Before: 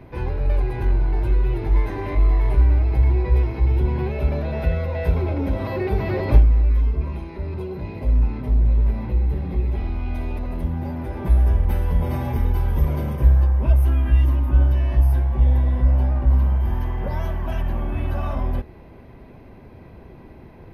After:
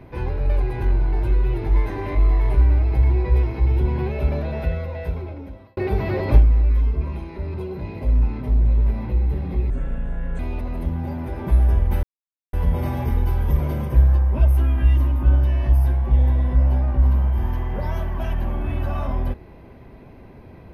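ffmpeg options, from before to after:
-filter_complex "[0:a]asplit=5[s0][s1][s2][s3][s4];[s0]atrim=end=5.77,asetpts=PTS-STARTPTS,afade=t=out:st=4.36:d=1.41[s5];[s1]atrim=start=5.77:end=9.704,asetpts=PTS-STARTPTS,afade=t=in:d=0.004:c=hsin[s6];[s2]atrim=start=9.7:end=10.17,asetpts=PTS-STARTPTS,asetrate=29988,aresample=44100[s7];[s3]atrim=start=10.166:end=11.81,asetpts=PTS-STARTPTS,afade=t=out:st=1.64:d=0.004:c=hsin,apad=pad_dur=0.5[s8];[s4]atrim=start=11.81,asetpts=PTS-STARTPTS,afade=t=in:d=0.004:c=hsin[s9];[s5][s6]concat=n=2:v=0:a=1[s10];[s10][s7]acrossfade=d=0.004:c1=hsin:c2=hsin[s11];[s8][s9]concat=n=2:v=0:a=1[s12];[s11][s12]acrossfade=d=0.004:c1=hsin:c2=hsin"

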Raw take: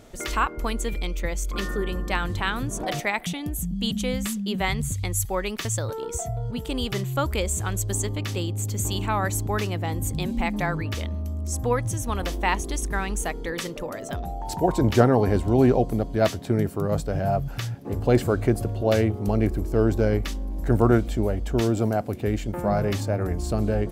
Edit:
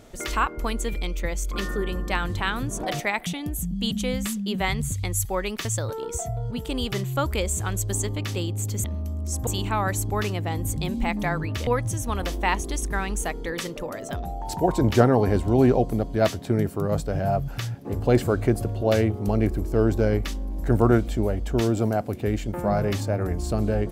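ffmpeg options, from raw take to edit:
-filter_complex "[0:a]asplit=4[s0][s1][s2][s3];[s0]atrim=end=8.842[s4];[s1]atrim=start=11.038:end=11.672[s5];[s2]atrim=start=8.838:end=11.042[s6];[s3]atrim=start=11.668[s7];[s4][s5]acrossfade=d=0.004:c1=hsin:c2=hsin[s8];[s8][s6]acrossfade=d=0.004:c1=hsin:c2=hsin[s9];[s9][s7]acrossfade=d=0.004:c1=hsin:c2=hsin"

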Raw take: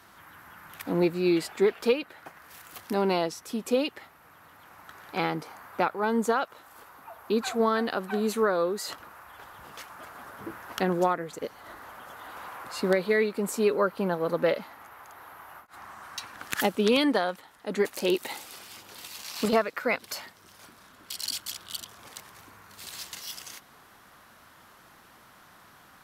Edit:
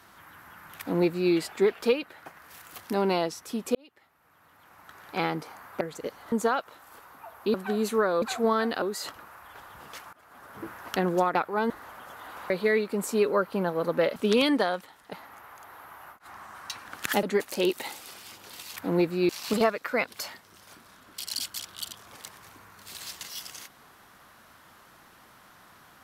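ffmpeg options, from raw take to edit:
-filter_complex "[0:a]asplit=16[s0][s1][s2][s3][s4][s5][s6][s7][s8][s9][s10][s11][s12][s13][s14][s15];[s0]atrim=end=3.75,asetpts=PTS-STARTPTS,afade=t=out:st=3.746:d=0.004:c=hsin[s16];[s1]atrim=start=3.75:end=5.812,asetpts=PTS-STARTPTS,afade=t=in:d=1.43[s17];[s2]atrim=start=11.188:end=11.702[s18];[s3]atrim=start=6.158:end=7.382[s19];[s4]atrim=start=7.978:end=8.662[s20];[s5]atrim=start=7.378:end=7.982[s21];[s6]atrim=start=8.658:end=9.97,asetpts=PTS-STARTPTS,afade=t=out:st=1.308:d=0.004:c=hsin:silence=0.0944061[s22];[s7]atrim=start=9.97:end=11.192,asetpts=PTS-STARTPTS,afade=t=in:d=0.53:silence=0.0944061[s23];[s8]atrim=start=5.808:end=6.162[s24];[s9]atrim=start=11.698:end=12.502[s25];[s10]atrim=start=12.948:end=14.612[s26];[s11]atrim=start=16.708:end=17.682[s27];[s12]atrim=start=14.608:end=16.712[s28];[s13]atrim=start=17.678:end=19.212[s29];[s14]atrim=start=0.788:end=1.322[s30];[s15]atrim=start=19.208[s31];[s16][s17]concat=n=2:v=0:a=1[s32];[s32][s18]acrossfade=d=0.004:c1=hsin:c2=hsin[s33];[s33][s19]acrossfade=d=0.004:c1=hsin:c2=hsin[s34];[s34][s20]acrossfade=d=0.004:c1=hsin:c2=hsin[s35];[s35][s21]acrossfade=d=0.004:c1=hsin:c2=hsin[s36];[s22][s23]concat=n=2:v=0:a=1[s37];[s36][s37]acrossfade=d=0.004:c1=hsin:c2=hsin[s38];[s38][s24]acrossfade=d=0.004:c1=hsin:c2=hsin[s39];[s39][s25]acrossfade=d=0.004:c1=hsin:c2=hsin[s40];[s40][s26]acrossfade=d=0.004:c1=hsin:c2=hsin[s41];[s41][s27]acrossfade=d=0.004:c1=hsin:c2=hsin[s42];[s42][s28]acrossfade=d=0.004:c1=hsin:c2=hsin[s43];[s43][s29]acrossfade=d=0.004:c1=hsin:c2=hsin[s44];[s44][s30]acrossfade=d=0.004:c1=hsin:c2=hsin[s45];[s45][s31]acrossfade=d=0.004:c1=hsin:c2=hsin"

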